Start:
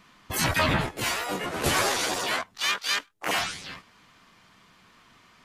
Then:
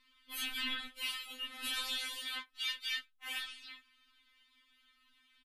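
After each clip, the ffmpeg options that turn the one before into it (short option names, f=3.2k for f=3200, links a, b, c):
-af "firequalizer=gain_entry='entry(180,0);entry(290,-20);entry(770,-20);entry(1200,-9);entry(3400,4);entry(6000,-13);entry(10000,-3)':delay=0.05:min_phase=1,afftfilt=real='re*3.46*eq(mod(b,12),0)':imag='im*3.46*eq(mod(b,12),0)':win_size=2048:overlap=0.75,volume=-6dB"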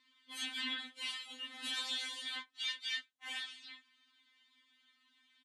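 -af "highpass=260,equalizer=f=290:t=q:w=4:g=4,equalizer=f=460:t=q:w=4:g=-7,equalizer=f=1.3k:t=q:w=4:g=-8,equalizer=f=2.6k:t=q:w=4:g=-7,equalizer=f=5k:t=q:w=4:g=-4,lowpass=f=8.2k:w=0.5412,lowpass=f=8.2k:w=1.3066,volume=1.5dB"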